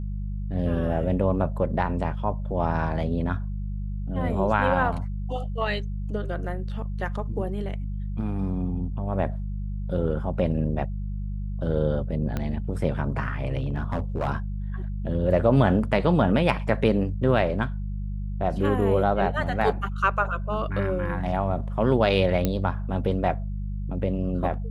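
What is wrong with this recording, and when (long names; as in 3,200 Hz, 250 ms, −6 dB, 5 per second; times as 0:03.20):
mains hum 50 Hz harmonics 4 −30 dBFS
0:12.37: click −15 dBFS
0:13.57–0:14.28: clipping −21 dBFS
0:22.45: click −10 dBFS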